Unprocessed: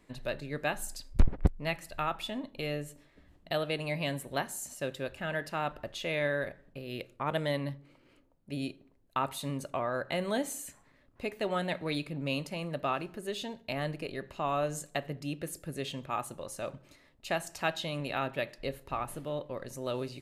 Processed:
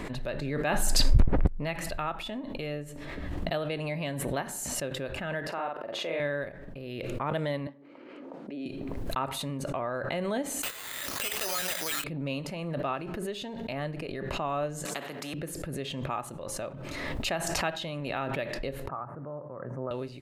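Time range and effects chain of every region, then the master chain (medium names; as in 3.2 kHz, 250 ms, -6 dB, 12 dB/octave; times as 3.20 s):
5.47–6.20 s: high-pass 340 Hz + treble shelf 2.2 kHz -11.5 dB + doubling 49 ms -2 dB
7.67–8.66 s: high-pass 240 Hz 24 dB/octave + tape spacing loss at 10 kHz 20 dB
10.63–12.04 s: frequency weighting ITU-R 468 + hard clipper -31 dBFS + careless resampling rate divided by 8×, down none, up zero stuff
14.85–15.34 s: high-pass 210 Hz 24 dB/octave + upward compressor, threshold -46 dBFS + spectrum-flattening compressor 2:1
18.88–19.91 s: elliptic band-pass 120–1400 Hz + peaking EQ 330 Hz -6 dB 2.2 oct
whole clip: treble shelf 3.9 kHz -9 dB; swell ahead of each attack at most 23 dB/s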